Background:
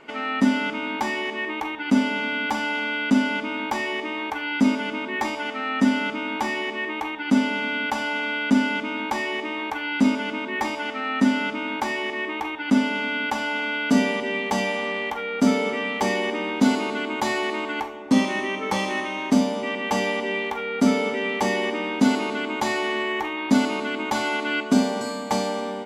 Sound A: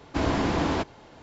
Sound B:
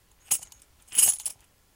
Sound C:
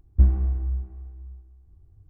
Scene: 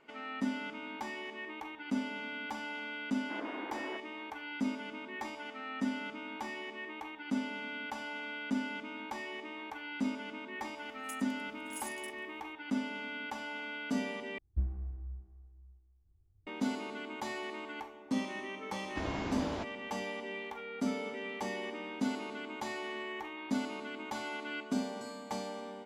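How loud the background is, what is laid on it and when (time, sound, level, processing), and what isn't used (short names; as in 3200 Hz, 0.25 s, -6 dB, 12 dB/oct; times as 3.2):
background -15 dB
3.15 add A -16 dB + brick-wall FIR band-pass 250–2300 Hz
10.78 add B -13.5 dB + compressor 2:1, threshold -36 dBFS
14.38 replace with C -16 dB
18.81 add A -12.5 dB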